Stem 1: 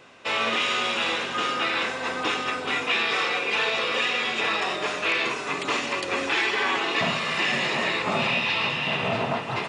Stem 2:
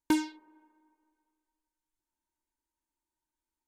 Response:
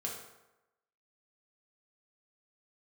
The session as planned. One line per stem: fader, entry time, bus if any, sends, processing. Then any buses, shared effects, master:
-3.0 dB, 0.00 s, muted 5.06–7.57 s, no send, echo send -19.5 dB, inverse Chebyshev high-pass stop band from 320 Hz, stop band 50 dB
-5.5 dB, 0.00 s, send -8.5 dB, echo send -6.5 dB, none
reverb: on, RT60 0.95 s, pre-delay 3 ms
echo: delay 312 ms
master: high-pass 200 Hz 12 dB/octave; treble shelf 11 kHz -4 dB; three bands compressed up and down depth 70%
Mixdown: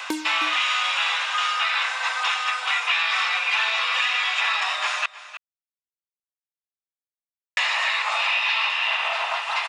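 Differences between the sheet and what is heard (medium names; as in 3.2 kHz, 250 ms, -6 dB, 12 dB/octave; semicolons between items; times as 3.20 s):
stem 1 -3.0 dB -> +3.0 dB; stem 2: send -8.5 dB -> -15.5 dB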